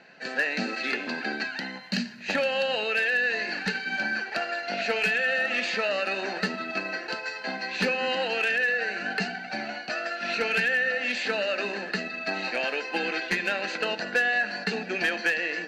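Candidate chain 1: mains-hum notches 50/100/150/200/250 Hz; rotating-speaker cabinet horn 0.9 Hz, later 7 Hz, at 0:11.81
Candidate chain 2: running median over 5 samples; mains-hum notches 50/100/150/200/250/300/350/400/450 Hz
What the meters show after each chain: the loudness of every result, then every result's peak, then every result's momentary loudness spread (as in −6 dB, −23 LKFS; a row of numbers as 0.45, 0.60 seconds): −29.5, −27.5 LKFS; −13.5, −16.0 dBFS; 10, 8 LU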